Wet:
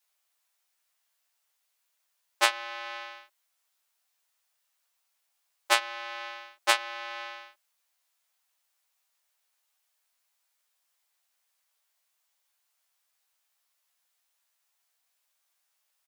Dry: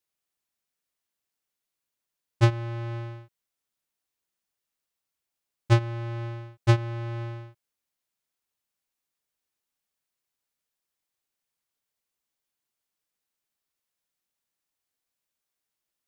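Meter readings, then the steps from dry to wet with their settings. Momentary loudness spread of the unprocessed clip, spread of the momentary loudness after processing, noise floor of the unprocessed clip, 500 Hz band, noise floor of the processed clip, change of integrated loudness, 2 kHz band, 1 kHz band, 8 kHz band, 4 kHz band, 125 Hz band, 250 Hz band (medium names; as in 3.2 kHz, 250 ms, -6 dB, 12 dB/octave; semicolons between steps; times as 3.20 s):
14 LU, 15 LU, under -85 dBFS, -4.0 dB, -77 dBFS, -1.5 dB, +8.5 dB, +4.5 dB, no reading, +10.5 dB, under -40 dB, -19.0 dB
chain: tracing distortion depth 0.053 ms; high-pass 620 Hz 24 dB/octave; doubling 13 ms -4 dB; trim +7.5 dB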